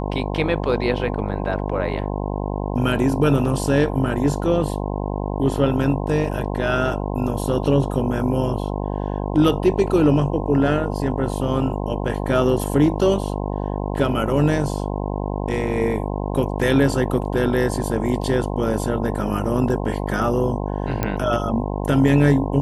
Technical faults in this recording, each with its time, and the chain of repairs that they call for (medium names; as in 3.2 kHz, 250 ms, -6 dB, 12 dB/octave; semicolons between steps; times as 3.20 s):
buzz 50 Hz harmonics 21 -25 dBFS
21.03 s: pop -8 dBFS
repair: de-click; de-hum 50 Hz, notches 21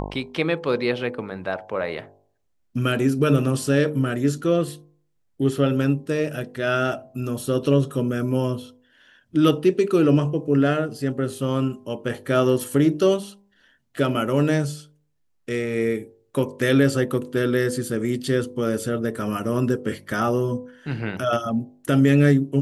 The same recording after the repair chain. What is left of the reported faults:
nothing left